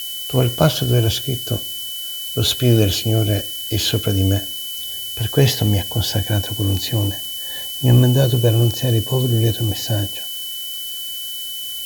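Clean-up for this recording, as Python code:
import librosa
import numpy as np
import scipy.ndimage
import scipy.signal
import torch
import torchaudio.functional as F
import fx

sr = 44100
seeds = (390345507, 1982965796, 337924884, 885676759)

y = fx.notch(x, sr, hz=3000.0, q=30.0)
y = fx.noise_reduce(y, sr, print_start_s=11.18, print_end_s=11.68, reduce_db=30.0)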